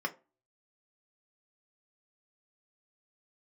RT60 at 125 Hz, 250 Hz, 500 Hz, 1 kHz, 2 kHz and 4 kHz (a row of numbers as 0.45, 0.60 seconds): 0.30, 0.35, 0.35, 0.30, 0.25, 0.15 seconds